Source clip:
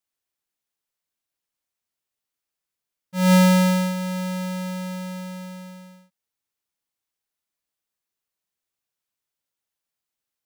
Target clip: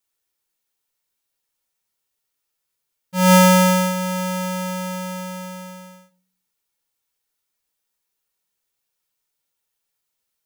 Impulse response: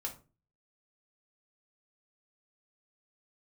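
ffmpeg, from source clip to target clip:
-filter_complex "[0:a]asplit=2[a][b];[b]highshelf=f=4.5k:g=7.5[c];[1:a]atrim=start_sample=2205[d];[c][d]afir=irnorm=-1:irlink=0,volume=0dB[e];[a][e]amix=inputs=2:normalize=0"

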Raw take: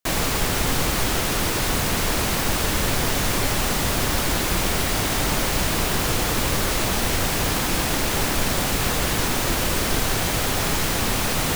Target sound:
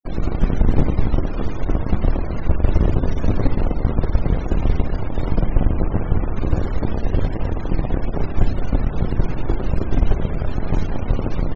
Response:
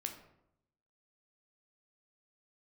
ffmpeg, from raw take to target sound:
-filter_complex "[0:a]lowshelf=f=320:g=9,acrusher=bits=3:dc=4:mix=0:aa=0.000001,acrossover=split=630[a][b];[a]aeval=exprs='0.531*(cos(1*acos(clip(val(0)/0.531,-1,1)))-cos(1*PI/2))+0.0473*(cos(3*acos(clip(val(0)/0.531,-1,1)))-cos(3*PI/2))+0.0376*(cos(4*acos(clip(val(0)/0.531,-1,1)))-cos(4*PI/2))':c=same[c];[b]asoftclip=type=tanh:threshold=-27dB[d];[c][d]amix=inputs=2:normalize=0,asettb=1/sr,asplit=3[e][f][g];[e]atrim=end=5.404[h];[f]atrim=start=5.4:end=6.34,asetpts=PTS-STARTPTS,afade=t=in:d=0.004:c=qsin,afade=t=out:st=0.936:d=0.004:c=qsin,bass=f=250:g=0,treble=f=4k:g=-6[i];[g]atrim=start=6.336[j];[h][i]acrossfade=d=0.004:c1=hsin:c2=qsin[k];[k][j]acrossfade=d=0.004:c1=qsin:c2=hsin,asplit=2[l][m];[m]adelay=200,highpass=300,lowpass=3.4k,asoftclip=type=hard:threshold=-12.5dB,volume=-10dB[n];[l][n]amix=inputs=2:normalize=0,asplit=2[o][p];[1:a]atrim=start_sample=2205,lowshelf=f=83:g=12[q];[p][q]afir=irnorm=-1:irlink=0,volume=3dB[r];[o][r]amix=inputs=2:normalize=0,afftfilt=real='re*gte(hypot(re,im),0.0891)':imag='im*gte(hypot(re,im),0.0891)':win_size=1024:overlap=0.75,aresample=16000,aresample=44100,volume=-10dB"

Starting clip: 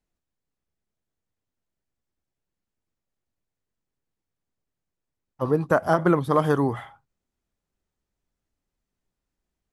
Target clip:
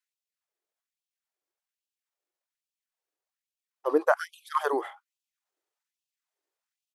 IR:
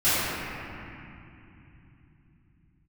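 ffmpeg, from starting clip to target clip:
-af "atempo=1.4,afftfilt=real='re*gte(b*sr/1024,280*pow(2500/280,0.5+0.5*sin(2*PI*1.2*pts/sr)))':imag='im*gte(b*sr/1024,280*pow(2500/280,0.5+0.5*sin(2*PI*1.2*pts/sr)))':win_size=1024:overlap=0.75"

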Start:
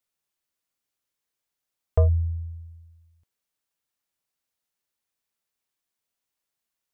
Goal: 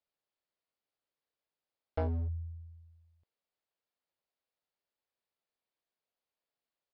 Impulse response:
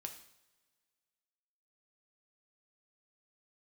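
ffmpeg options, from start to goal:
-af "aresample=11025,asoftclip=type=hard:threshold=-24dB,aresample=44100,equalizer=f=560:t=o:w=1.5:g=8.5,volume=-7.5dB"

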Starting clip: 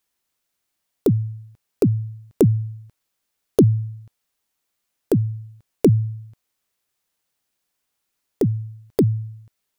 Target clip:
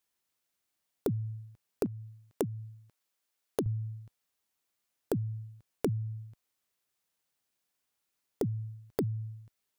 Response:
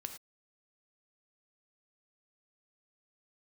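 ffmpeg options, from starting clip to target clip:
-af "asetnsamples=n=441:p=0,asendcmd='1.86 highpass f 330;3.66 highpass f 48',highpass=f=43:p=1,acompressor=threshold=-24dB:ratio=4,volume=-5.5dB"

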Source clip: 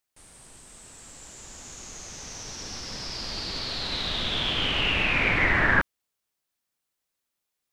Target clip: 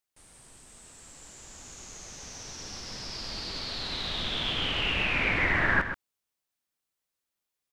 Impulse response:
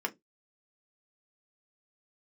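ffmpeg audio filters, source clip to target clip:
-af "aecho=1:1:129:0.335,volume=-4dB"

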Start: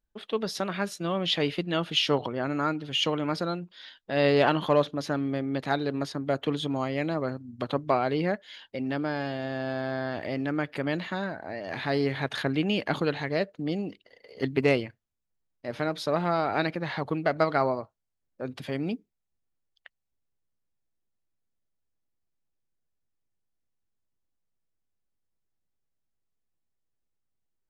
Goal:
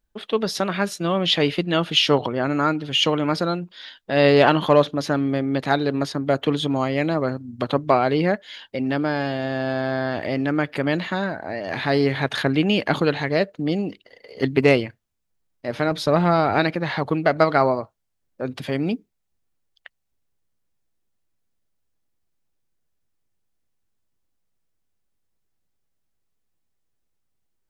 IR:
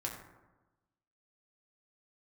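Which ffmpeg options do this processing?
-filter_complex "[0:a]asettb=1/sr,asplit=3[a][b][c];[a]atrim=end=15.914[d];[b]atrim=start=15.91:end=16.59,asetpts=PTS-STARTPTS,afade=t=in:d=0.004:c=qsin,afade=t=out:st=0.676:d=0.004:c=qsin,lowshelf=f=140:g=10[e];[c]atrim=start=16.586[f];[d][e]acrossfade=d=0.004:c1=hsin:c2=qsin[g];[g][f]acrossfade=d=0.004:c1=qsin:c2=hsin,volume=7dB"

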